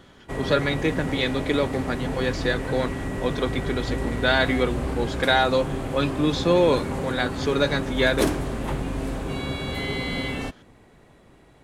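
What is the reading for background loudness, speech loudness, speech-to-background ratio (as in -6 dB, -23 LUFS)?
-29.5 LUFS, -24.5 LUFS, 5.0 dB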